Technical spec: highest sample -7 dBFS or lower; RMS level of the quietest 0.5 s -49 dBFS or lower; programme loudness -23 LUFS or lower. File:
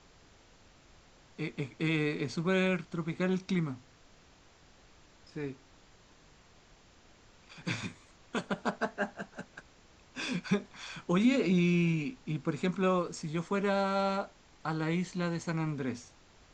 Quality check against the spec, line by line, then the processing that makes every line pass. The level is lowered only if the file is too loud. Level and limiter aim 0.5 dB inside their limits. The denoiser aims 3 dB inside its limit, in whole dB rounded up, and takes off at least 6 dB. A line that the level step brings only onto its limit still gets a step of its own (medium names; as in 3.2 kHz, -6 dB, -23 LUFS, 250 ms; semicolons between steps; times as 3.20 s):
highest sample -15.0 dBFS: pass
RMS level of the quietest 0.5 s -60 dBFS: pass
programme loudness -32.5 LUFS: pass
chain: none needed